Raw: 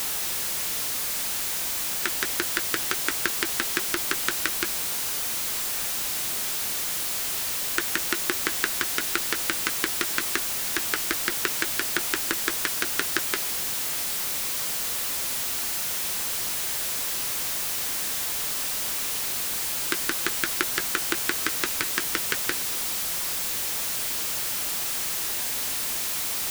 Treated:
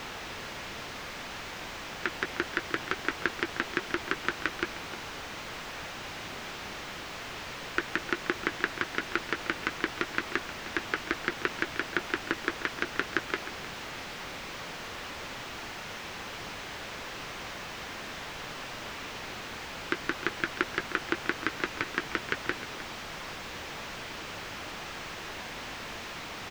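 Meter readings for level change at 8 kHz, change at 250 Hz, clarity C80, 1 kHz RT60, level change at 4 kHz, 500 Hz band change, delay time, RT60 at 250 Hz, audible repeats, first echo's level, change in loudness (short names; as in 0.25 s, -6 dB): -20.5 dB, 0.0 dB, none, none, -9.0 dB, -0.5 dB, 0.308 s, none, 1, -14.0 dB, -10.0 dB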